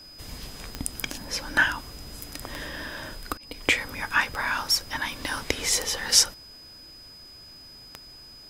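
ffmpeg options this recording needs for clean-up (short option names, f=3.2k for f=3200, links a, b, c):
-af "adeclick=t=4,bandreject=f=5k:w=30"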